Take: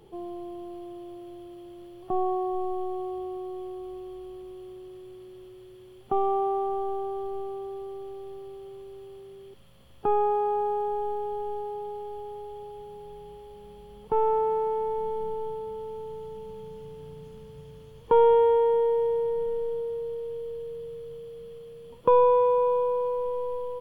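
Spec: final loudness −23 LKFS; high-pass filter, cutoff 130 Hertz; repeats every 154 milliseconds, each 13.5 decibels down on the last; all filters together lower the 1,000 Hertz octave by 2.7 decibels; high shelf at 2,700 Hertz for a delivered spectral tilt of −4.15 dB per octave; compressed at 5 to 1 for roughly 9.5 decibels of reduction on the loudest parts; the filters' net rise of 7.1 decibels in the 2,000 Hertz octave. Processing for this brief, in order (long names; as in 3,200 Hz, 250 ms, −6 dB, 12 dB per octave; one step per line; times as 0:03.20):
high-pass filter 130 Hz
parametric band 1,000 Hz −5.5 dB
parametric band 2,000 Hz +7.5 dB
high-shelf EQ 2,700 Hz +8.5 dB
downward compressor 5 to 1, threshold −27 dBFS
repeating echo 154 ms, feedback 21%, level −13.5 dB
level +10.5 dB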